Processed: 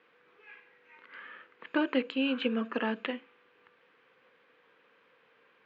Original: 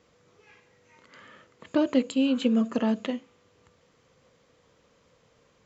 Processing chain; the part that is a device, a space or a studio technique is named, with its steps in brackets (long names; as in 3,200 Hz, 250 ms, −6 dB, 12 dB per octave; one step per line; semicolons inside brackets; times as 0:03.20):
phone earpiece (loudspeaker in its box 370–3,300 Hz, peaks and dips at 620 Hz −8 dB, 1,600 Hz +8 dB, 2,500 Hz +5 dB)